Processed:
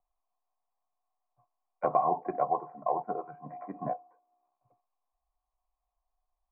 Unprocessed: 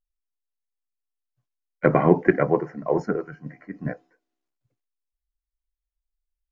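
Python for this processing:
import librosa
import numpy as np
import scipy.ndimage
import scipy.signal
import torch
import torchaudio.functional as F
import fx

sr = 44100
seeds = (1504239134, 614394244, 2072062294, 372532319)

y = fx.formant_cascade(x, sr, vowel='a')
y = fx.band_squash(y, sr, depth_pct=70)
y = y * librosa.db_to_amplitude(6.5)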